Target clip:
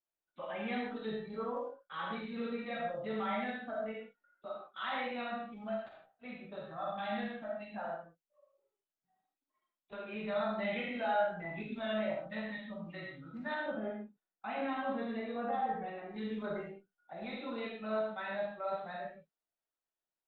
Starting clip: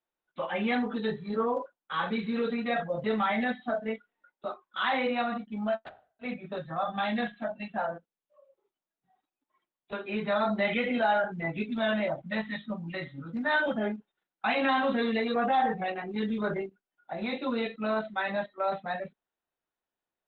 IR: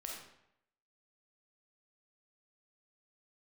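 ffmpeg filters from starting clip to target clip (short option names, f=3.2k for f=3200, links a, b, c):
-filter_complex "[0:a]asettb=1/sr,asplit=3[a][b][c];[a]atrim=end=13.544[d];[b]atrim=start=13.54:end=16.09,asetpts=PTS-STARTPTS,afade=t=in:d=0.004:c=qsin,afade=t=out:st=2.546:d=0.004:c=qsin,highshelf=f=2.2k:g=-12[e];[c]atrim=start=16.086[f];[d][e]acrossfade=d=0.004:c1=hsin:c2=qsin[g];[g][f]acrossfade=d=0.004:c1=qsin:c2=hsin[h];[1:a]atrim=start_sample=2205,afade=t=out:st=0.22:d=0.01,atrim=end_sample=10143[i];[h][i]afir=irnorm=-1:irlink=0,volume=-6.5dB"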